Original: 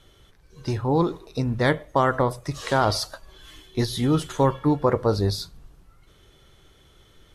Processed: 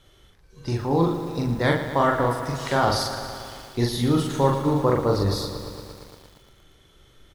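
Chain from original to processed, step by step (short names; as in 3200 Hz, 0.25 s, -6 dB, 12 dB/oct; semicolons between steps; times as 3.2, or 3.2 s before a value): doubler 42 ms -2.5 dB; lo-fi delay 0.115 s, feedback 80%, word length 7-bit, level -10.5 dB; gain -2 dB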